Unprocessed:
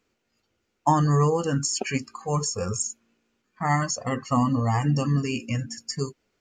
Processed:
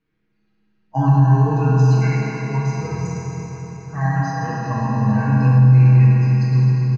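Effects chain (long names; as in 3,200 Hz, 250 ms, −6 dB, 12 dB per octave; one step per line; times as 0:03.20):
spectral magnitudes quantised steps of 15 dB
low-pass filter 2,200 Hz 12 dB per octave
parametric band 670 Hz −11 dB 1.5 octaves
notch filter 1,300 Hz, Q 10
comb filter 5.8 ms, depth 76%
echo through a band-pass that steps 102 ms, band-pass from 210 Hz, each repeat 1.4 octaves, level −4 dB
convolution reverb RT60 4.5 s, pre-delay 13 ms, DRR −6.5 dB
wrong playback speed 48 kHz file played as 44.1 kHz
boost into a limiter +4 dB
level −4.5 dB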